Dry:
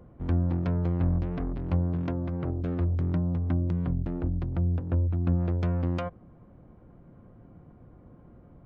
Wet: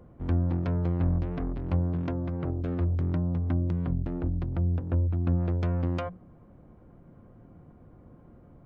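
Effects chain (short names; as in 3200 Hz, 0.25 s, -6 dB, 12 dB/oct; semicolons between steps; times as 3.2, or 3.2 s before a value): notches 60/120/180 Hz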